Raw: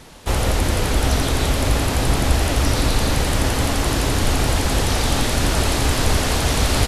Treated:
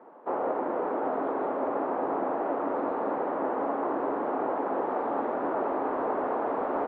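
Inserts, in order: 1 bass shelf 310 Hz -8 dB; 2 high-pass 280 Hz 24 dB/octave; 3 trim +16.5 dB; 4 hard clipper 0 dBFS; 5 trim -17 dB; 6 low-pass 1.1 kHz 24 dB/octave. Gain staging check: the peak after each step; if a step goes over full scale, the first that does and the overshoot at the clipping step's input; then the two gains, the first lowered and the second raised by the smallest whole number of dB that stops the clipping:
-8.0 dBFS, -10.5 dBFS, +6.0 dBFS, 0.0 dBFS, -17.0 dBFS, -17.5 dBFS; step 3, 6.0 dB; step 3 +10.5 dB, step 5 -11 dB

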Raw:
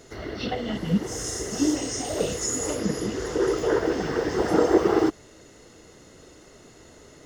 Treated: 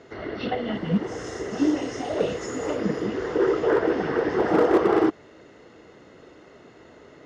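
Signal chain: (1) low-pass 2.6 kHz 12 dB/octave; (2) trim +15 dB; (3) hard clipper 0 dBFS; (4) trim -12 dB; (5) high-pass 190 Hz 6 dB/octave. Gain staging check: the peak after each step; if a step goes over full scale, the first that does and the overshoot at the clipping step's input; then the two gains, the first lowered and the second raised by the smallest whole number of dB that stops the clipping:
-6.5 dBFS, +8.5 dBFS, 0.0 dBFS, -12.0 dBFS, -9.0 dBFS; step 2, 8.5 dB; step 2 +6 dB, step 4 -3 dB

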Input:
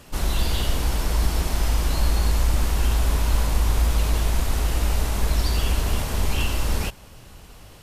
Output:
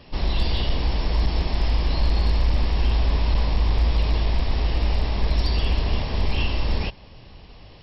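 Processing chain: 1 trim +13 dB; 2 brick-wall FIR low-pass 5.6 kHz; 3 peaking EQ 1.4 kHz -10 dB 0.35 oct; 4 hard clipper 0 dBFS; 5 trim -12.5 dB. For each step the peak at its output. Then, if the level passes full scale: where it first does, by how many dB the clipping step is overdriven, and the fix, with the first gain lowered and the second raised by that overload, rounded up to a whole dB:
+5.0 dBFS, +4.5 dBFS, +4.5 dBFS, 0.0 dBFS, -12.5 dBFS; step 1, 4.5 dB; step 1 +8 dB, step 5 -7.5 dB

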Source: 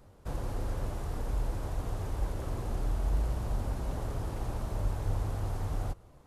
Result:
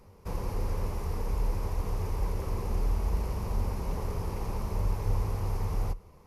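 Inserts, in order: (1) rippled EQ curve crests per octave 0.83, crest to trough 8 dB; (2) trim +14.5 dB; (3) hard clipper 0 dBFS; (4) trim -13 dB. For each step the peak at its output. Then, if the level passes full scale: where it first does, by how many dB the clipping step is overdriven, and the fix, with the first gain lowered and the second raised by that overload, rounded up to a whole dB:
-19.0 dBFS, -4.5 dBFS, -4.5 dBFS, -17.5 dBFS; nothing clips

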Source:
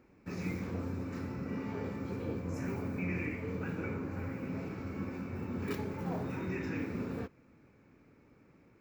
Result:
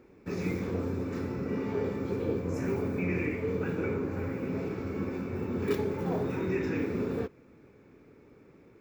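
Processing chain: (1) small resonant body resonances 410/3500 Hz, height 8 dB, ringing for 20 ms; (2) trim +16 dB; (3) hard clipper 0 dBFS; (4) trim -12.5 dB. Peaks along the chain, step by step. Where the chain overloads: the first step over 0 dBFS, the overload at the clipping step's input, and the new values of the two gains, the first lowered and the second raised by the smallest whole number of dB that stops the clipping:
-20.5 dBFS, -4.5 dBFS, -4.5 dBFS, -17.0 dBFS; nothing clips

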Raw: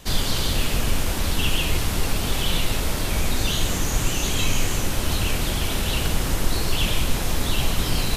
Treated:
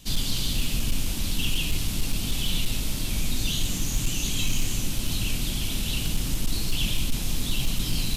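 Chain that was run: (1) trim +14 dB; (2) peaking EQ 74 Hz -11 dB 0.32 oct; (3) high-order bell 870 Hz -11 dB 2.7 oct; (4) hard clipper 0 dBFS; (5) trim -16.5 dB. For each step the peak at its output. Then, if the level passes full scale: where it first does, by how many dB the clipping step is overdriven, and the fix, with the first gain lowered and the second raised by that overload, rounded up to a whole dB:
+6.5 dBFS, +6.5 dBFS, +6.0 dBFS, 0.0 dBFS, -16.5 dBFS; step 1, 6.0 dB; step 1 +8 dB, step 5 -10.5 dB

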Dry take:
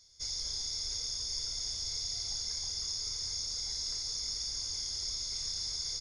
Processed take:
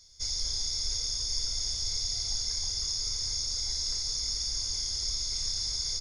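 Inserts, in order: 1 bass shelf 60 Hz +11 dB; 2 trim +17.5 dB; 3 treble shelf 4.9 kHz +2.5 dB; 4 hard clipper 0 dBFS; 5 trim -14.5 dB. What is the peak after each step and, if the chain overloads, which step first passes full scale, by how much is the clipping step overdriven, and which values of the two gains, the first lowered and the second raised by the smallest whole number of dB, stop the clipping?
-21.0 dBFS, -3.5 dBFS, -2.5 dBFS, -2.5 dBFS, -17.0 dBFS; nothing clips

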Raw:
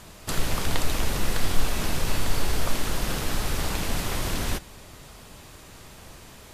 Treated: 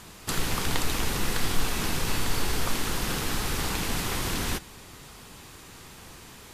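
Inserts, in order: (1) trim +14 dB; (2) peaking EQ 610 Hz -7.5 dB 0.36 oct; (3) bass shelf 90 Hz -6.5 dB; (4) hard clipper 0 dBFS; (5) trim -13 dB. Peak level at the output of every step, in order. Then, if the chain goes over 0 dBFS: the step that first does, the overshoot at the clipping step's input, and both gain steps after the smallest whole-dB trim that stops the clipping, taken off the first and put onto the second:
+6.5 dBFS, +6.5 dBFS, +4.0 dBFS, 0.0 dBFS, -13.0 dBFS; step 1, 4.0 dB; step 1 +10 dB, step 5 -9 dB

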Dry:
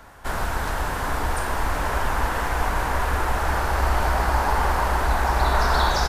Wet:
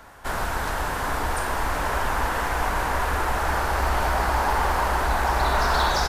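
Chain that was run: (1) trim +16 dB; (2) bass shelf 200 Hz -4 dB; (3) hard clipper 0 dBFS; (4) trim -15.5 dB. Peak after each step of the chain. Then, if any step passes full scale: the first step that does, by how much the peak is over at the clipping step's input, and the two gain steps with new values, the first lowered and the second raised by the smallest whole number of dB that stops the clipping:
+7.5 dBFS, +6.5 dBFS, 0.0 dBFS, -15.5 dBFS; step 1, 6.5 dB; step 1 +9 dB, step 4 -8.5 dB

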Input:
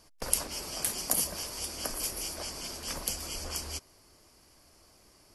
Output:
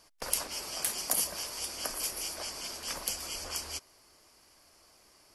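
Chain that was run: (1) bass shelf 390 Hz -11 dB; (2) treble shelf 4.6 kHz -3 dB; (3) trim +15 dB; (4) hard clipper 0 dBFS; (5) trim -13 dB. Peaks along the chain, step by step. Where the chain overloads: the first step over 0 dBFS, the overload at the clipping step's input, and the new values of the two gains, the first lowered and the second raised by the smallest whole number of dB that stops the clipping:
-3.0 dBFS, -5.5 dBFS, +9.5 dBFS, 0.0 dBFS, -13.0 dBFS; step 3, 9.5 dB; step 3 +5 dB, step 5 -3 dB

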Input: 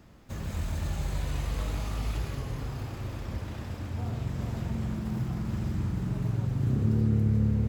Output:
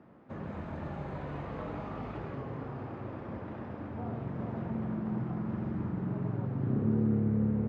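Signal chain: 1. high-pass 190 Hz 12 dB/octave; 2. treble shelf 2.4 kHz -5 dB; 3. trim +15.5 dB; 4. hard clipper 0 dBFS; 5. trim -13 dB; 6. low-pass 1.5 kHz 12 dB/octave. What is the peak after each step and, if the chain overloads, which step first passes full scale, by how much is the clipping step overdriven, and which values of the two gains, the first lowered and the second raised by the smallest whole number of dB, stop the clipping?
-20.5 dBFS, -20.5 dBFS, -5.0 dBFS, -5.0 dBFS, -18.0 dBFS, -18.0 dBFS; nothing clips

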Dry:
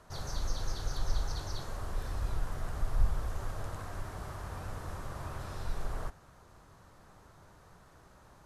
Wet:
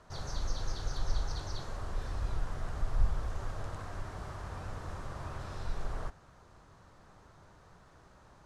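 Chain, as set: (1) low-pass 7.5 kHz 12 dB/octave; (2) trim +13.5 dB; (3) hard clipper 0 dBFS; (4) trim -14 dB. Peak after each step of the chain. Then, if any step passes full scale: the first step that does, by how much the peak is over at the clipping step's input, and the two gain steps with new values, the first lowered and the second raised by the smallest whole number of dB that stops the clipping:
-15.5 dBFS, -2.0 dBFS, -2.0 dBFS, -16.0 dBFS; nothing clips

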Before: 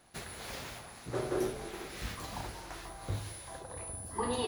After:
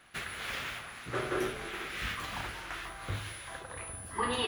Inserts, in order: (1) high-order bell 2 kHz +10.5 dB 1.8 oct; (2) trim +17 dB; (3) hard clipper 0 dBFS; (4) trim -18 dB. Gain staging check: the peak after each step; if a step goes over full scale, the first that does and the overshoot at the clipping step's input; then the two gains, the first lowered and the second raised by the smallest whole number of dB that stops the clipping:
-19.0 dBFS, -2.0 dBFS, -2.0 dBFS, -20.0 dBFS; nothing clips

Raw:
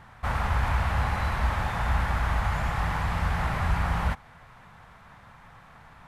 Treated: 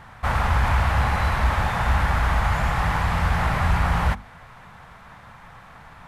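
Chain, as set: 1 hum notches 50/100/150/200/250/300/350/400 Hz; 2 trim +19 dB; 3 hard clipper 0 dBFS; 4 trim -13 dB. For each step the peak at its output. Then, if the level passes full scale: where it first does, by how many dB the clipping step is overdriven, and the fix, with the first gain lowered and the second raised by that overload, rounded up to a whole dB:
-13.5 dBFS, +5.5 dBFS, 0.0 dBFS, -13.0 dBFS; step 2, 5.5 dB; step 2 +13 dB, step 4 -7 dB

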